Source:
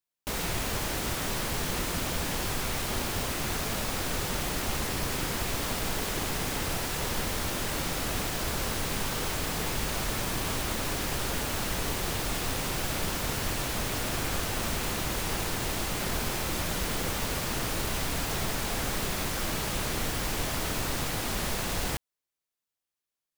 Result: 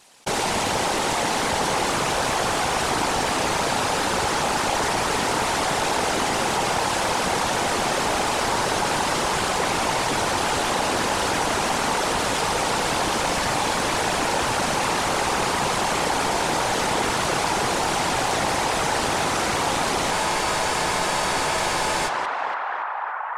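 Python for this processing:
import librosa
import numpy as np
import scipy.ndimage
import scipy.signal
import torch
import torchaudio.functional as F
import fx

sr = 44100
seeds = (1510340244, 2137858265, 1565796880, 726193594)

p1 = fx.cabinet(x, sr, low_hz=110.0, low_slope=12, high_hz=9800.0, hz=(160.0, 500.0, 840.0), db=(-7, 4, 9))
p2 = fx.echo_banded(p1, sr, ms=286, feedback_pct=84, hz=1200.0, wet_db=-4.0)
p3 = 10.0 ** (-25.5 / 20.0) * np.tanh(p2 / 10.0 ** (-25.5 / 20.0))
p4 = p2 + (p3 * 10.0 ** (2.0 / 20.0))
p5 = fx.whisperise(p4, sr, seeds[0])
p6 = fx.spec_freeze(p5, sr, seeds[1], at_s=20.13, hold_s=1.93)
y = fx.env_flatten(p6, sr, amount_pct=50)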